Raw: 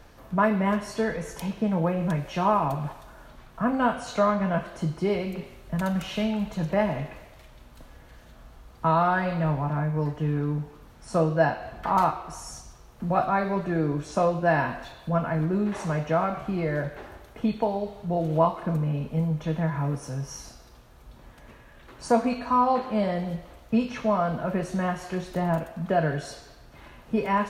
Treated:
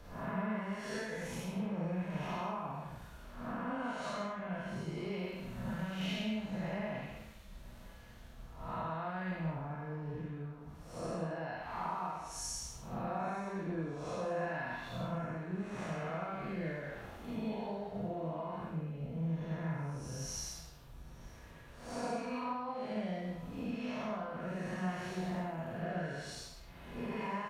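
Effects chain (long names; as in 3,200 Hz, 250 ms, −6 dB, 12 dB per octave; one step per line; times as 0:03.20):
spectrum smeared in time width 304 ms
reverb reduction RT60 0.75 s
dynamic equaliser 2,400 Hz, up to +6 dB, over −50 dBFS, Q 0.86
downward compressor 10 to 1, threshold −40 dBFS, peak gain reduction 18.5 dB
on a send: repeating echo 927 ms, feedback 54%, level −20 dB
on the sum: four-comb reverb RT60 0.54 s, combs from 33 ms, DRR 0 dB
multiband upward and downward expander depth 40%
level +1 dB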